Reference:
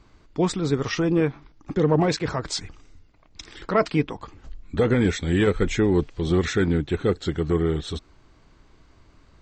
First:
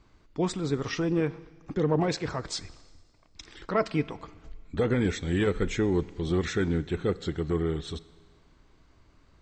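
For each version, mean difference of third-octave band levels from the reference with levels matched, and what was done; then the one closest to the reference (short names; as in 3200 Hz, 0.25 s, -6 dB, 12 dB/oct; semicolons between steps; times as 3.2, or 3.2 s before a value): 1.5 dB: Schroeder reverb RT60 1.6 s, combs from 32 ms, DRR 18.5 dB; gain -5.5 dB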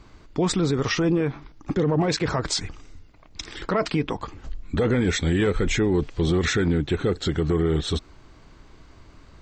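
3.0 dB: limiter -19.5 dBFS, peak gain reduction 10.5 dB; gain +5.5 dB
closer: first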